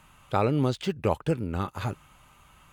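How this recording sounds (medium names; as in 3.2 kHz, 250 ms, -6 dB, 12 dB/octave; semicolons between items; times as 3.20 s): noise floor -59 dBFS; spectral tilt -6.5 dB/octave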